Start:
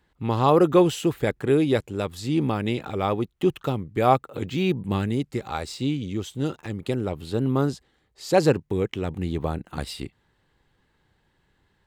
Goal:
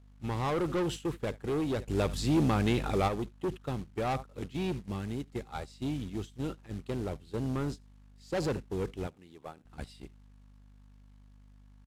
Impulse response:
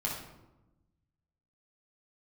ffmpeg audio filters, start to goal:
-filter_complex "[0:a]aeval=exprs='val(0)+0.0158*(sin(2*PI*50*n/s)+sin(2*PI*2*50*n/s)/2+sin(2*PI*3*50*n/s)/3+sin(2*PI*4*50*n/s)/4+sin(2*PI*5*50*n/s)/5)':c=same,asettb=1/sr,asplit=3[a][b][c];[a]atrim=end=9.074[d];[b]atrim=start=9.07:end=9.65,asetpts=PTS-STARTPTS,afade=t=in:d=0.004:c=qsin,afade=t=out:st=0.576:d=0.004:c=qsin,highpass=f=480:p=1[e];[c]atrim=start=9.646[f];[d][e]acrossfade=d=0.004:c1=hsin:c2=qsin[g];[g][f]acrossfade=d=0.004:c1=qsin:c2=hsin,aecho=1:1:76:0.0891,asettb=1/sr,asplit=3[h][i][j];[h]atrim=end=4.754[k];[i]atrim=start=4.75:end=5.32,asetpts=PTS-STARTPTS,afade=t=in:d=0.004:c=qsin,afade=t=out:st=0.566:d=0.004:c=qsin,acompressor=threshold=-25dB:ratio=3[l];[j]atrim=start=5.316[m];[k][l]acrossfade=d=0.004:c1=hsin:c2=qsin[n];[n][m]acrossfade=d=0.004:c1=qsin:c2=hsin,acrusher=bits=4:mode=log:mix=0:aa=0.000001,lowpass=11k,asoftclip=type=tanh:threshold=-21dB,asplit=3[o][p][q];[o]afade=t=out:st=1.86:d=0.02[r];[p]acontrast=75,afade=t=in:st=1.86:d=0.02,afade=t=out:st=3.07:d=0.02[s];[q]afade=t=in:st=3.07:d=0.02[t];[r][s][t]amix=inputs=3:normalize=0,agate=range=-13dB:threshold=-30dB:ratio=16:detection=peak,volume=-6dB"

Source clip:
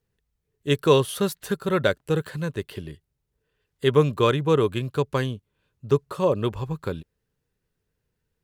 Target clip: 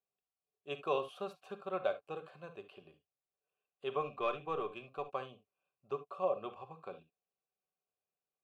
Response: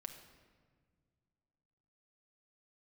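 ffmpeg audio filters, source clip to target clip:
-filter_complex "[0:a]asplit=3[a][b][c];[a]bandpass=f=730:t=q:w=8,volume=0dB[d];[b]bandpass=f=1.09k:t=q:w=8,volume=-6dB[e];[c]bandpass=f=2.44k:t=q:w=8,volume=-9dB[f];[d][e][f]amix=inputs=3:normalize=0,asettb=1/sr,asplit=3[g][h][i];[g]atrim=end=4.014[j];[h]atrim=start=4.01:end=5.02,asetpts=PTS-STARTPTS,afade=t=in:d=0.004:c=qsin,afade=t=out:st=1.006:d=0.004:c=qsin,aeval=exprs='0.1*(cos(1*acos(clip(val(0)/0.1,-1,1)))-cos(1*PI/2))+0.00282*(cos(4*acos(clip(val(0)/0.1,-1,1)))-cos(4*PI/2))':c=same[k];[i]atrim=start=5.016[l];[j][k]acrossfade=d=0.004:c1=hsin:c2=qsin[m];[m][l]acrossfade=d=0.004:c1=qsin:c2=hsin[n];[1:a]atrim=start_sample=2205,atrim=end_sample=3528[o];[n][o]afir=irnorm=-1:irlink=0,volume=3dB"

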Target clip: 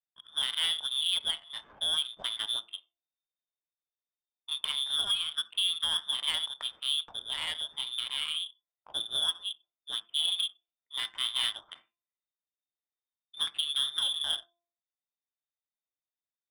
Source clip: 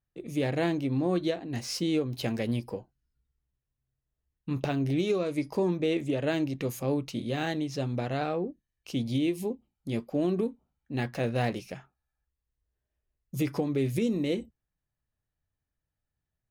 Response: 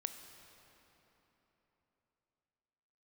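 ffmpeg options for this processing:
-filter_complex "[0:a]lowpass=f=3.1k:t=q:w=0.5098,lowpass=f=3.1k:t=q:w=0.6013,lowpass=f=3.1k:t=q:w=0.9,lowpass=f=3.1k:t=q:w=2.563,afreqshift=-3700,lowshelf=f=420:g=4.5,bandreject=f=343.2:t=h:w=4,bandreject=f=686.4:t=h:w=4,bandreject=f=1.0296k:t=h:w=4[a];[1:a]atrim=start_sample=2205,atrim=end_sample=4410[b];[a][b]afir=irnorm=-1:irlink=0,adynamicsmooth=sensitivity=4:basefreq=1.1k"

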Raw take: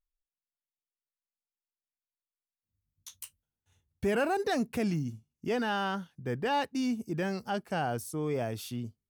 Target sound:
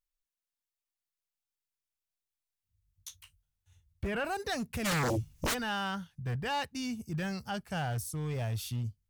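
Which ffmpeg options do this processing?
-filter_complex "[0:a]asubboost=boost=10.5:cutoff=98,asoftclip=type=hard:threshold=-24.5dB,asettb=1/sr,asplit=3[a][b][c];[a]atrim=end=3.164[d];[b]atrim=start=3.16:end=4.25,asetpts=PTS-STARTPTS,afade=t=in:d=0.004:c=qsin,afade=t=out:st=1.086:d=0.004:c=qsin,acrossover=split=3500[e][f];[f]acompressor=threshold=-60dB:ratio=4:attack=1:release=60[g];[e][g]amix=inputs=2:normalize=0[h];[c]atrim=start=4.246[i];[d][h]acrossfade=d=0.004:c1=hsin:c2=qsin[j];[j][i]acrossfade=d=0.004:c1=qsin:c2=hsin,tiltshelf=f=1.3k:g=-3.5,asplit=3[k][l][m];[k]afade=t=out:st=4.84:d=0.02[n];[l]aeval=exprs='0.0531*sin(PI/2*7.08*val(0)/0.0531)':c=same,afade=t=in:st=4.84:d=0.02,afade=t=out:st=5.53:d=0.02[o];[m]afade=t=in:st=5.53:d=0.02[p];[n][o][p]amix=inputs=3:normalize=0,volume=-1.5dB"

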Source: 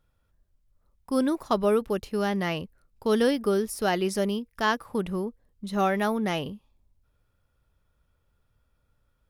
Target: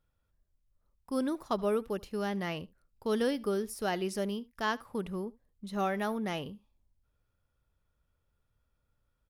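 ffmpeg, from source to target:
-af "aecho=1:1:75:0.0708,volume=-7dB"

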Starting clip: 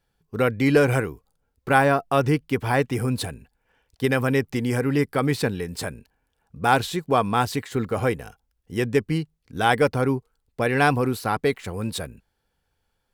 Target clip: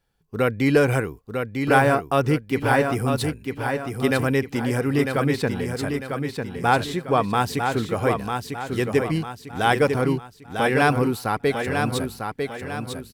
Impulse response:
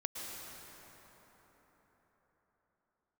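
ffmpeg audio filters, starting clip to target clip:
-filter_complex "[0:a]asettb=1/sr,asplit=3[a][b][c];[a]atrim=end=5.124[d];[b]atrim=start=5.12:end=7.3,asetpts=PTS-STARTPTS,afade=t=in:d=0.004:c=qsin,afade=t=out:st=2.176:d=0.004:c=qsin,highshelf=f=5.8k:g=-6.5[e];[c]atrim=start=7.296[f];[d][e]acrossfade=d=0.004:c1=hsin:c2=qsin[g];[g][f]acrossfade=d=0.004:c1=qsin:c2=hsin,aecho=1:1:949|1898|2847|3796|4745:0.531|0.218|0.0892|0.0366|0.015"

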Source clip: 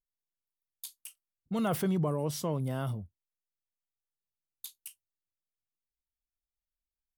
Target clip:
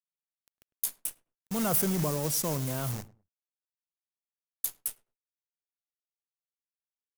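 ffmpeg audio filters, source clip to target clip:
-filter_complex "[0:a]acrusher=bits=4:mode=log:mix=0:aa=0.000001,aexciter=amount=4.7:drive=1.9:freq=5.4k,acrusher=bits=7:dc=4:mix=0:aa=0.000001,acompressor=mode=upward:threshold=-48dB:ratio=2.5,asplit=2[a][b];[b]adelay=103,lowpass=f=1.1k:p=1,volume=-18.5dB,asplit=2[c][d];[d]adelay=103,lowpass=f=1.1k:p=1,volume=0.23[e];[a][c][e]amix=inputs=3:normalize=0"

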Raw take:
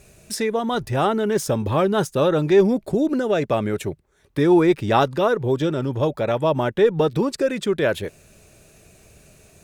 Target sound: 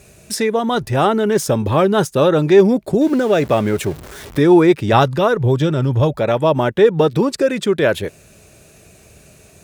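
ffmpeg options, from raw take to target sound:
-filter_complex "[0:a]asettb=1/sr,asplit=3[a][b][c];[a]atrim=end=3.014[d];[b]atrim=start=3.01:end=4.39,asetpts=PTS-STARTPTS,afade=t=in:d=0.004:c=qsin,afade=t=out:st=1.376:d=0.004:c=qsin,aeval=exprs='val(0)+0.5*0.02*sgn(val(0))':c=same[e];[c]atrim=start=4.386[f];[d][e]acrossfade=d=0.004:c1=hsin:c2=qsin[g];[g][f]acrossfade=d=0.004:c1=qsin:c2=hsin,asplit=3[h][i][j];[h]afade=t=out:st=4.92:d=0.02[k];[i]asubboost=boost=3:cutoff=150,afade=t=in:st=4.92:d=0.02,afade=t=out:st=6.18:d=0.02[l];[j]afade=t=in:st=6.18:d=0.02[m];[k][l][m]amix=inputs=3:normalize=0,highpass=47,volume=5dB"

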